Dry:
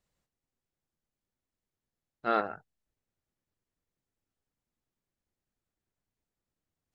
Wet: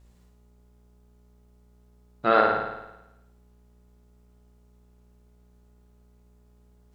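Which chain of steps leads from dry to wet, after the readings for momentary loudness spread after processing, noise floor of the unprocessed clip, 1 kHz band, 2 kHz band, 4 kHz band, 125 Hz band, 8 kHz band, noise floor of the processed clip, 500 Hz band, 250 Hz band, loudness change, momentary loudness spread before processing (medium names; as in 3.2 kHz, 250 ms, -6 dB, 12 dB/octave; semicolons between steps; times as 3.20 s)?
17 LU, under -85 dBFS, +9.5 dB, +11.0 dB, +10.0 dB, +12.5 dB, no reading, -59 dBFS, +10.5 dB, +7.5 dB, +8.0 dB, 14 LU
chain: in parallel at +2 dB: compression, threshold -38 dBFS, peak gain reduction 15 dB; on the sum: wow and flutter 58 cents; mains buzz 60 Hz, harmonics 24, -61 dBFS -9 dB/octave; flutter echo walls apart 9.4 m, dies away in 0.95 s; trim +5 dB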